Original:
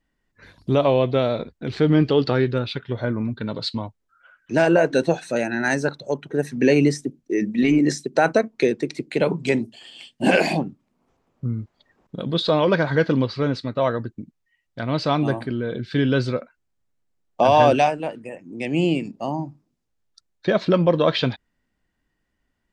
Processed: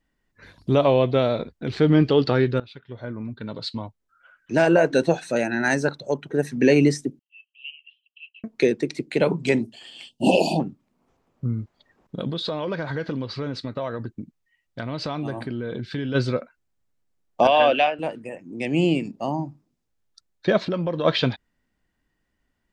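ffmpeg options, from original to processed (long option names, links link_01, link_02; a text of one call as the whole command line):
ffmpeg -i in.wav -filter_complex "[0:a]asettb=1/sr,asplit=3[link_01][link_02][link_03];[link_01]atrim=end=7.194[link_04];[link_02]atrim=start=7.19:end=8.44,asetpts=PTS-STARTPTS,afade=type=in:duration=0.004:curve=qsin,afade=type=out:start_time=1.246:duration=0.004:curve=qsin,asuperpass=centerf=2900:order=8:qfactor=5.1[link_05];[link_03]atrim=start=8.436[link_06];[link_04][link_05]acrossfade=duration=0.004:curve1=hsin:curve2=qsin[link_07];[link_07][link_06]acrossfade=duration=0.004:curve1=qsin:curve2=hsin,asettb=1/sr,asplit=3[link_08][link_09][link_10];[link_08]atrim=end=10.094[link_11];[link_09]atrim=start=10.09:end=10.6,asetpts=PTS-STARTPTS,afade=type=in:duration=0.004:curve=qsin,afade=type=out:start_time=0.506:duration=0.004:curve=qsin,asuperstop=centerf=1600:order=20:qfactor=0.99[link_12];[link_10]atrim=start=10.596[link_13];[link_11][link_12]acrossfade=duration=0.004:curve1=hsin:curve2=qsin[link_14];[link_14][link_13]acrossfade=duration=0.004:curve1=qsin:curve2=hsin,asplit=3[link_15][link_16][link_17];[link_15]afade=type=out:start_time=12.29:duration=0.02[link_18];[link_16]acompressor=threshold=-25dB:ratio=4:attack=3.2:release=140:knee=1:detection=peak,afade=type=in:start_time=12.29:duration=0.02,afade=type=out:start_time=16.14:duration=0.02[link_19];[link_17]afade=type=in:start_time=16.14:duration=0.02[link_20];[link_18][link_19][link_20]amix=inputs=3:normalize=0,asettb=1/sr,asplit=3[link_21][link_22][link_23];[link_21]atrim=end=17.474[link_24];[link_22]atrim=start=17.47:end=17.99,asetpts=PTS-STARTPTS,afade=type=in:duration=0.004:curve=qsin,afade=type=out:start_time=0.516:duration=0.004:curve=qsin,highpass=370,equalizer=frequency=390:width_type=q:width=4:gain=-7,equalizer=frequency=910:width_type=q:width=4:gain=-7,equalizer=frequency=3000:width_type=q:width=4:gain=8,lowpass=frequency=3700:width=0.5412,lowpass=frequency=3700:width=1.3066[link_25];[link_23]atrim=start=17.986[link_26];[link_24][link_25]acrossfade=duration=0.004:curve1=hsin:curve2=qsin[link_27];[link_27][link_26]acrossfade=duration=0.004:curve1=qsin:curve2=hsin,asplit=3[link_28][link_29][link_30];[link_28]afade=type=out:start_time=20.63:duration=0.02[link_31];[link_29]acompressor=threshold=-25dB:ratio=2.5:attack=3.2:release=140:knee=1:detection=peak,afade=type=in:start_time=20.63:duration=0.02,afade=type=out:start_time=21.04:duration=0.02[link_32];[link_30]afade=type=in:start_time=21.04:duration=0.02[link_33];[link_31][link_32][link_33]amix=inputs=3:normalize=0,asplit=2[link_34][link_35];[link_34]atrim=end=2.6,asetpts=PTS-STARTPTS,afade=type=out:start_time=2.596:duration=0.004:curve=hsin:silence=0.125893[link_36];[link_35]atrim=start=2.6,asetpts=PTS-STARTPTS,afade=type=in:duration=2.77:curve=qsin:silence=0.125893[link_37];[link_36][link_37]concat=n=2:v=0:a=1" out.wav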